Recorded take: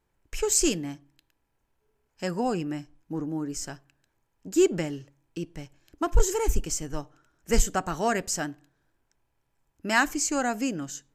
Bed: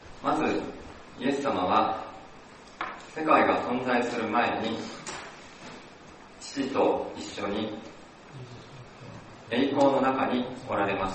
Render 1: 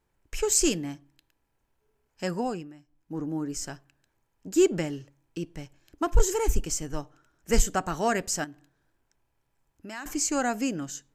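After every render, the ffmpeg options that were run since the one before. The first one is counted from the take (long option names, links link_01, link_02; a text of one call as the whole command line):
ffmpeg -i in.wav -filter_complex "[0:a]asettb=1/sr,asplit=3[link_01][link_02][link_03];[link_01]atrim=end=8.444[link_04];[link_02]atrim=start=8.44:end=10.06,asetpts=PTS-STARTPTS,afade=type=in:duration=0.004:curve=qsin,afade=type=out:start_time=1.616:duration=0.004:curve=qsin,acompressor=threshold=-43dB:ratio=2.5:attack=3.2:release=140:knee=1:detection=peak[link_05];[link_03]atrim=start=10.056[link_06];[link_04][link_05]acrossfade=duration=0.004:curve1=hsin:curve2=qsin[link_07];[link_07][link_06]acrossfade=duration=0.004:curve1=qsin:curve2=hsin,asplit=3[link_08][link_09][link_10];[link_08]atrim=end=2.73,asetpts=PTS-STARTPTS,afade=type=out:start_time=2.33:duration=0.4:silence=0.141254[link_11];[link_09]atrim=start=2.73:end=2.86,asetpts=PTS-STARTPTS,volume=-17dB[link_12];[link_10]atrim=start=2.86,asetpts=PTS-STARTPTS,afade=type=in:duration=0.4:silence=0.141254[link_13];[link_11][link_12][link_13]concat=n=3:v=0:a=1" out.wav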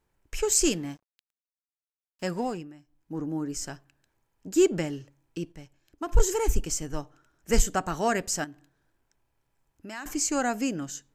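ffmpeg -i in.wav -filter_complex "[0:a]asettb=1/sr,asplit=3[link_01][link_02][link_03];[link_01]atrim=end=0.734[link_04];[link_02]atrim=start=0.73:end=2.58,asetpts=PTS-STARTPTS,afade=type=in:duration=0.004:curve=qsin,afade=type=out:start_time=1.846:duration=0.004:curve=qsin,aeval=exprs='sgn(val(0))*max(abs(val(0))-0.00266,0)':channel_layout=same[link_05];[link_03]atrim=start=2.576[link_06];[link_04][link_05]acrossfade=duration=0.004:curve1=hsin:curve2=qsin[link_07];[link_07][link_06]acrossfade=duration=0.004:curve1=qsin:curve2=hsin,asplit=3[link_08][link_09][link_10];[link_08]atrim=end=5.522[link_11];[link_09]atrim=start=5.518:end=6.092,asetpts=PTS-STARTPTS,volume=-6dB[link_12];[link_10]atrim=start=6.088[link_13];[link_11][link_12]acrossfade=duration=0.004:curve1=hsin:curve2=hsin[link_14];[link_14][link_13]acrossfade=duration=0.004:curve1=hsin:curve2=hsin" out.wav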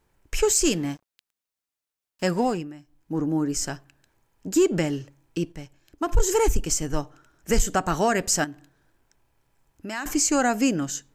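ffmpeg -i in.wav -af "acontrast=79,alimiter=limit=-11.5dB:level=0:latency=1:release=148" out.wav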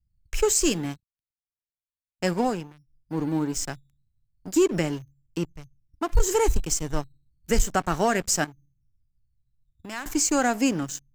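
ffmpeg -i in.wav -filter_complex "[0:a]acrossover=split=150[link_01][link_02];[link_01]acrusher=samples=9:mix=1:aa=0.000001:lfo=1:lforange=5.4:lforate=0.33[link_03];[link_02]aeval=exprs='sgn(val(0))*max(abs(val(0))-0.0133,0)':channel_layout=same[link_04];[link_03][link_04]amix=inputs=2:normalize=0" out.wav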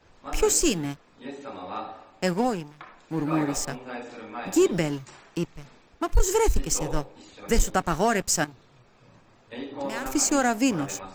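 ffmpeg -i in.wav -i bed.wav -filter_complex "[1:a]volume=-11dB[link_01];[0:a][link_01]amix=inputs=2:normalize=0" out.wav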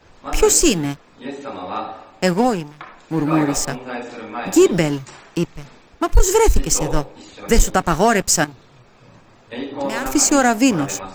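ffmpeg -i in.wav -af "volume=8dB,alimiter=limit=-2dB:level=0:latency=1" out.wav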